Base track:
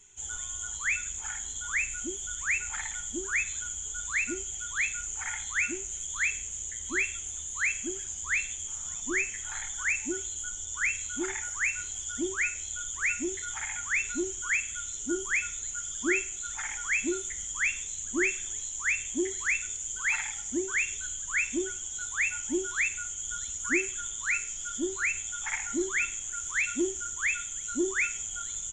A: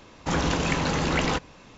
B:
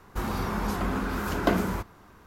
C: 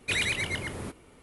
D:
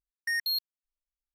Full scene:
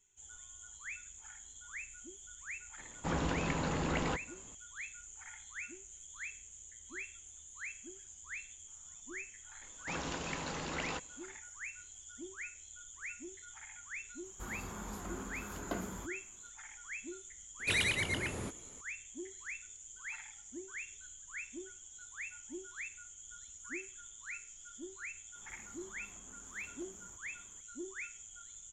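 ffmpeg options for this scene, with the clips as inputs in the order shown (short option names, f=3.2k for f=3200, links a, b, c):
-filter_complex "[1:a]asplit=2[a][b];[2:a]asplit=2[c][d];[0:a]volume=-16dB[e];[a]lowpass=f=2.5k:p=1[f];[b]lowshelf=f=310:g=-6.5[g];[c]equalizer=f=11k:w=2.5:g=5.5[h];[d]acompressor=threshold=-44dB:ratio=6:attack=3.2:release=140:knee=1:detection=peak[i];[f]atrim=end=1.77,asetpts=PTS-STARTPTS,volume=-9dB,afade=t=in:d=0.004:c=hsin,afade=t=out:st=1.766:d=0.004:c=hsin,adelay=2780[j];[g]atrim=end=1.77,asetpts=PTS-STARTPTS,volume=-13dB,afade=t=in:d=0.004:c=hsin,afade=t=out:st=1.766:d=0.004:c=hsin,adelay=9610[k];[h]atrim=end=2.26,asetpts=PTS-STARTPTS,volume=-15.5dB,afade=t=in:d=0.004:c=hsin,afade=t=out:st=2.256:d=0.004:c=hsin,adelay=14240[l];[3:a]atrim=end=1.22,asetpts=PTS-STARTPTS,volume=-3.5dB,afade=t=in:d=0.004:c=hsin,afade=t=out:st=1.216:d=0.004:c=hsin,adelay=17590[m];[i]atrim=end=2.26,asetpts=PTS-STARTPTS,volume=-14dB,afade=t=in:d=0.004:c=hsin,afade=t=out:st=2.256:d=0.004:c=hsin,adelay=25350[n];[e][j][k][l][m][n]amix=inputs=6:normalize=0"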